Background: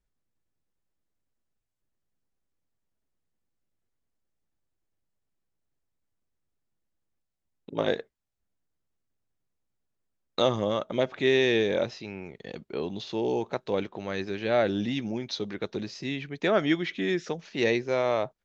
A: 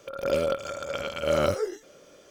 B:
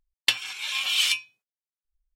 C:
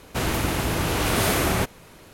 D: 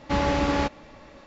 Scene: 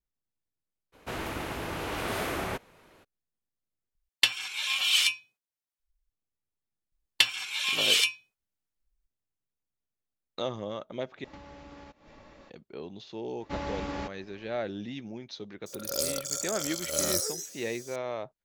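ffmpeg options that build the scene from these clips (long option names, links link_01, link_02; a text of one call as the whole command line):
ffmpeg -i bed.wav -i cue0.wav -i cue1.wav -i cue2.wav -i cue3.wav -filter_complex "[2:a]asplit=2[link_01][link_02];[4:a]asplit=2[link_03][link_04];[0:a]volume=-9dB[link_05];[3:a]bass=frequency=250:gain=-7,treble=frequency=4000:gain=-8[link_06];[link_03]acompressor=threshold=-38dB:ratio=20:attack=4.7:release=157:knee=1:detection=rms[link_07];[link_04]acontrast=25[link_08];[1:a]aexciter=amount=14.1:drive=7.1:freq=4200[link_09];[link_05]asplit=3[link_10][link_11][link_12];[link_10]atrim=end=3.954[link_13];[link_01]atrim=end=2.15,asetpts=PTS-STARTPTS,volume=-1dB[link_14];[link_11]atrim=start=6.096:end=11.244[link_15];[link_07]atrim=end=1.26,asetpts=PTS-STARTPTS,volume=-5.5dB[link_16];[link_12]atrim=start=12.496[link_17];[link_06]atrim=end=2.13,asetpts=PTS-STARTPTS,volume=-8dB,afade=type=in:duration=0.02,afade=type=out:start_time=2.11:duration=0.02,adelay=920[link_18];[link_02]atrim=end=2.15,asetpts=PTS-STARTPTS,volume=-0.5dB,afade=type=in:duration=0.004:curve=hsin,afade=type=out:start_time=2.146:duration=0.004:curve=hsin,adelay=6920[link_19];[link_08]atrim=end=1.26,asetpts=PTS-STARTPTS,volume=-16.5dB,afade=type=in:duration=0.004:curve=hsin,afade=type=out:start_time=1.256:duration=0.004:curve=hsin,adelay=13400[link_20];[link_09]atrim=end=2.3,asetpts=PTS-STARTPTS,volume=-10dB,afade=type=in:duration=0.004:curve=hsin,afade=type=out:start_time=2.296:duration=0.004:curve=hsin,adelay=15660[link_21];[link_13][link_14]acrossfade=duration=0.004:curve1=hsin:curve2=hsin[link_22];[link_22][link_15]acrossfade=duration=0.004:curve1=hsin:curve2=hsin[link_23];[link_23][link_16]acrossfade=duration=0.004:curve1=hsin:curve2=hsin[link_24];[link_24][link_17]acrossfade=duration=0.004:curve1=hsin:curve2=hsin[link_25];[link_25][link_18][link_19][link_20][link_21]amix=inputs=5:normalize=0" out.wav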